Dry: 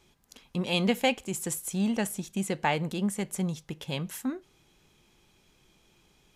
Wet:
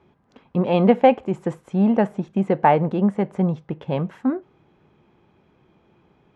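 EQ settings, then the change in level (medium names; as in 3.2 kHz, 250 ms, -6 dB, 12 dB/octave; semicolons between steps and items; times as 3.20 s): high-pass 89 Hz 12 dB/octave; low-pass 1.3 kHz 12 dB/octave; dynamic bell 670 Hz, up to +5 dB, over -43 dBFS, Q 0.83; +9.0 dB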